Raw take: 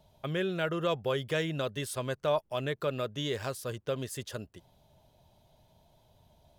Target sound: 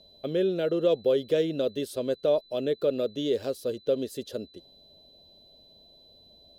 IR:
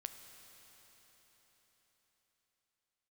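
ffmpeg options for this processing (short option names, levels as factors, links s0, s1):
-af "equalizer=f=125:t=o:w=1:g=-9,equalizer=f=250:t=o:w=1:g=8,equalizer=f=500:t=o:w=1:g=11,equalizer=f=1000:t=o:w=1:g=-11,equalizer=f=2000:t=o:w=1:g=-7,equalizer=f=4000:t=o:w=1:g=4,equalizer=f=8000:t=o:w=1:g=-6,aeval=exprs='val(0)+0.002*sin(2*PI*4000*n/s)':c=same" -ar 48000 -c:a libmp3lame -b:a 80k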